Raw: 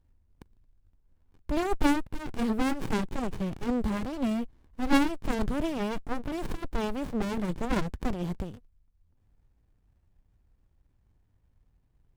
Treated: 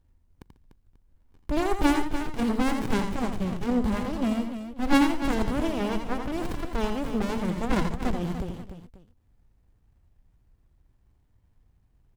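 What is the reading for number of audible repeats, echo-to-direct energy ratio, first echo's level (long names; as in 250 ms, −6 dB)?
4, −5.0 dB, −7.0 dB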